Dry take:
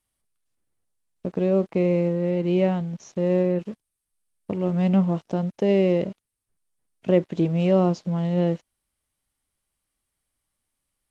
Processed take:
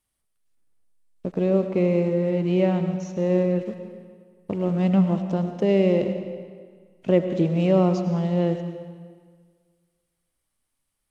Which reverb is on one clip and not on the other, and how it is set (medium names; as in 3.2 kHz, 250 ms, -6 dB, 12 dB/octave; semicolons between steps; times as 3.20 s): algorithmic reverb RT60 1.7 s, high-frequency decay 0.85×, pre-delay 60 ms, DRR 7.5 dB